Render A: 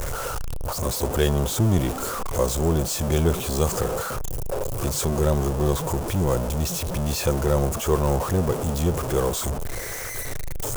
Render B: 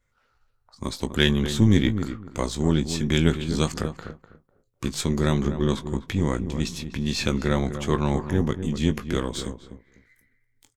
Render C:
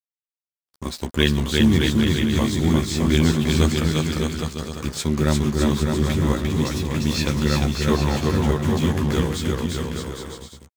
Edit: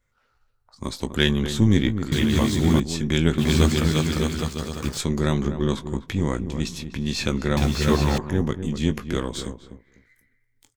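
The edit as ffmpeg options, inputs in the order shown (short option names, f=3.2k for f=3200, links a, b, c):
-filter_complex "[2:a]asplit=3[a][b][c];[1:a]asplit=4[d][e][f][g];[d]atrim=end=2.122[h];[a]atrim=start=2.118:end=2.802[i];[e]atrim=start=2.798:end=3.382[j];[b]atrim=start=3.378:end=4.982[k];[f]atrim=start=4.978:end=7.572[l];[c]atrim=start=7.568:end=8.182[m];[g]atrim=start=8.178[n];[h][i]acrossfade=d=0.004:c1=hsin:c2=hsin[o];[o][j]acrossfade=d=0.004:c1=hsin:c2=hsin[p];[p][k]acrossfade=d=0.004:c1=hsin:c2=hsin[q];[q][l]acrossfade=d=0.004:c1=hsin:c2=hsin[r];[r][m]acrossfade=d=0.004:c1=hsin:c2=hsin[s];[s][n]acrossfade=d=0.004:c1=hsin:c2=hsin"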